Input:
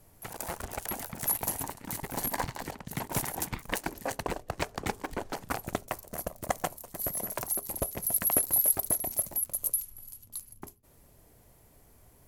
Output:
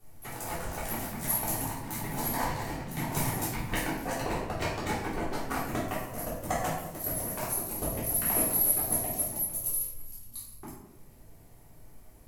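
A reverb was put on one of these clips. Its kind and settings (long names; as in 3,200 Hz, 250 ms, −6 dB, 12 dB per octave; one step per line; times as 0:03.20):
rectangular room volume 280 cubic metres, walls mixed, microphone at 3.5 metres
level −8 dB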